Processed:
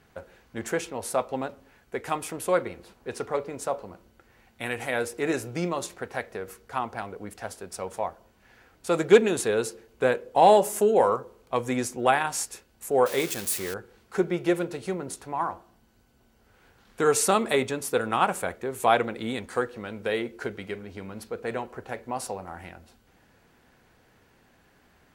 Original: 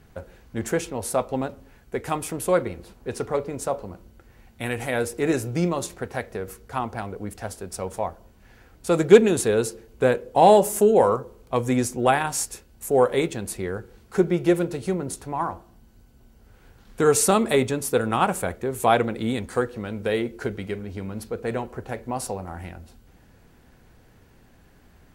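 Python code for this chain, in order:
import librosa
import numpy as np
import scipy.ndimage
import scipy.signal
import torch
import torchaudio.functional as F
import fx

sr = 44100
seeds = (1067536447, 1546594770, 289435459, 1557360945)

y = fx.crossing_spikes(x, sr, level_db=-19.5, at=(13.06, 13.74))
y = fx.lowpass(y, sr, hz=1800.0, slope=6)
y = fx.tilt_eq(y, sr, slope=3.0)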